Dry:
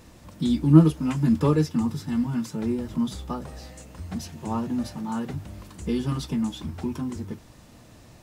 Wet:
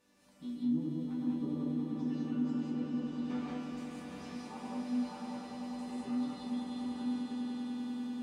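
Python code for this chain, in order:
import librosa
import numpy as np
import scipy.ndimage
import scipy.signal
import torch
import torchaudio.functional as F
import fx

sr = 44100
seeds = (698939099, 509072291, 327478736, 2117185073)

p1 = fx.halfwave_hold(x, sr, at=(3.19, 4.15))
p2 = fx.env_lowpass_down(p1, sr, base_hz=390.0, full_db=-17.0)
p3 = fx.highpass(p2, sr, hz=280.0, slope=6)
p4 = fx.resonator_bank(p3, sr, root=55, chord='major', decay_s=0.28)
p5 = p4 + fx.echo_swell(p4, sr, ms=98, loudest=8, wet_db=-9.0, dry=0)
p6 = fx.rev_gated(p5, sr, seeds[0], gate_ms=230, shape='rising', drr_db=-3.5)
y = p6 * librosa.db_to_amplitude(-1.5)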